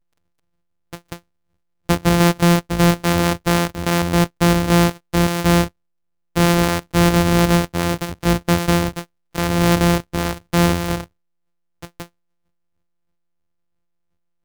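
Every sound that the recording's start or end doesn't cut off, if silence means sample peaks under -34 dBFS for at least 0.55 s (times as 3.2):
0.93–1.17
1.89–5.68
6.36–11.04
11.82–12.05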